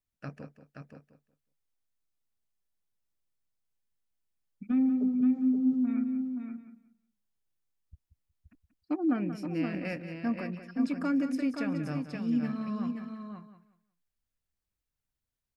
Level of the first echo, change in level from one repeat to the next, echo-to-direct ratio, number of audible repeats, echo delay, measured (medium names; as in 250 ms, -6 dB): -11.5 dB, no regular repeats, -4.5 dB, 5, 183 ms